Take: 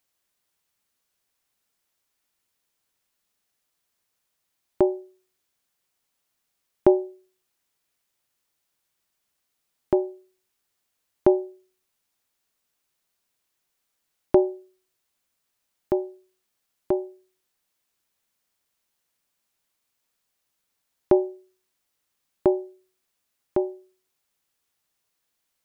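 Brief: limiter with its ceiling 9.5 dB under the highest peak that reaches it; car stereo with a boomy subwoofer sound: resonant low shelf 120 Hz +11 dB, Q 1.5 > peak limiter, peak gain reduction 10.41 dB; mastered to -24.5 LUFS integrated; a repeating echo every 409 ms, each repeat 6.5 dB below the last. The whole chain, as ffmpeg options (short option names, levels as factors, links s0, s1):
-af "alimiter=limit=0.211:level=0:latency=1,lowshelf=f=120:t=q:w=1.5:g=11,aecho=1:1:409|818|1227|1636|2045|2454:0.473|0.222|0.105|0.0491|0.0231|0.0109,volume=4.22,alimiter=limit=0.299:level=0:latency=1"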